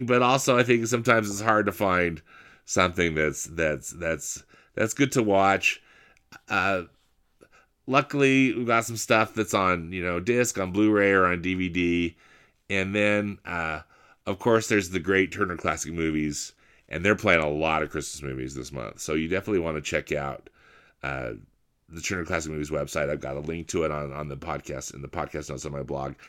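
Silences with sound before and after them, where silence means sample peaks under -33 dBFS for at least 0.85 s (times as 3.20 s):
6.83–7.88 s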